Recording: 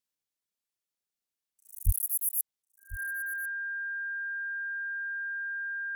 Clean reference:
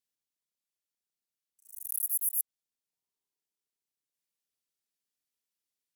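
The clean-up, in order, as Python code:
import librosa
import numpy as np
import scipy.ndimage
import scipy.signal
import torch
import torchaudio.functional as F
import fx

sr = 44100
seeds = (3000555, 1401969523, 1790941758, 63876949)

y = fx.notch(x, sr, hz=1600.0, q=30.0)
y = fx.fix_deplosive(y, sr, at_s=(1.85,))
y = fx.fix_echo_inverse(y, sr, delay_ms=1047, level_db=-16.5)
y = fx.fix_level(y, sr, at_s=2.62, step_db=8.0)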